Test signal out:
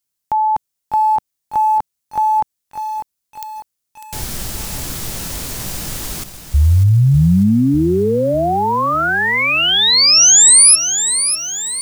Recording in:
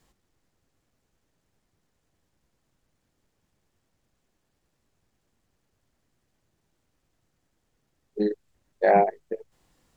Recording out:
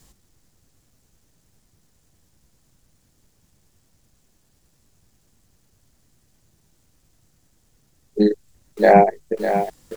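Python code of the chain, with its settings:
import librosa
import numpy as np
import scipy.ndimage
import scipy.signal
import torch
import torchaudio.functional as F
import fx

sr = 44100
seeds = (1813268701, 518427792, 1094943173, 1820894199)

y = fx.bass_treble(x, sr, bass_db=7, treble_db=10)
y = fx.echo_crushed(y, sr, ms=599, feedback_pct=55, bits=7, wet_db=-9)
y = y * librosa.db_to_amplitude(6.5)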